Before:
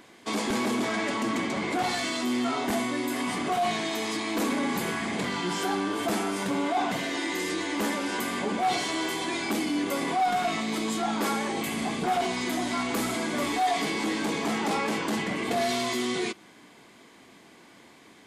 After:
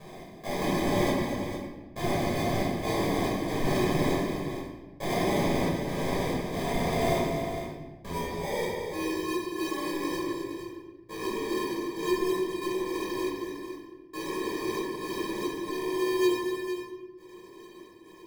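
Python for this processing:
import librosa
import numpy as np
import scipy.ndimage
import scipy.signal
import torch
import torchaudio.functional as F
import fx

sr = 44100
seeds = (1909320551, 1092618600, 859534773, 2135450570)

p1 = fx.lower_of_two(x, sr, delay_ms=2.0)
p2 = fx.highpass(p1, sr, hz=200.0, slope=6)
p3 = fx.peak_eq(p2, sr, hz=720.0, db=-14.5, octaves=1.2)
p4 = fx.over_compress(p3, sr, threshold_db=-42.0, ratio=-1.0)
p5 = p3 + (p4 * 10.0 ** (0.0 / 20.0))
p6 = fx.step_gate(p5, sr, bpm=69, pattern='x.xxx....xxx.x', floor_db=-60.0, edge_ms=4.5)
p7 = fx.filter_sweep_bandpass(p6, sr, from_hz=2400.0, to_hz=340.0, start_s=7.56, end_s=8.83, q=6.5)
p8 = fx.sample_hold(p7, sr, seeds[0], rate_hz=1400.0, jitter_pct=0)
p9 = fx.echo_multitap(p8, sr, ms=(241, 458), db=(-9.0, -10.0))
p10 = fx.room_shoebox(p9, sr, seeds[1], volume_m3=680.0, walls='mixed', distance_m=5.6)
y = p10 * 10.0 ** (2.5 / 20.0)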